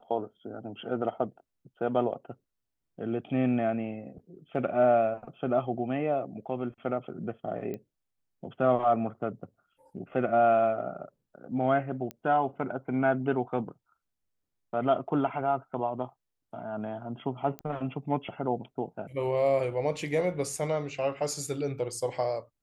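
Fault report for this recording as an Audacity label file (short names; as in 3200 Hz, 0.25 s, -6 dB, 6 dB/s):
7.740000	7.740000	pop -25 dBFS
12.110000	12.110000	pop -22 dBFS
17.590000	17.590000	pop -23 dBFS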